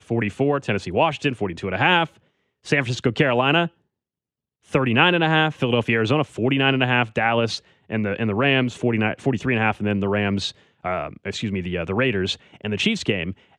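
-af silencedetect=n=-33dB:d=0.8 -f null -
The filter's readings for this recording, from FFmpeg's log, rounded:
silence_start: 3.68
silence_end: 4.73 | silence_duration: 1.05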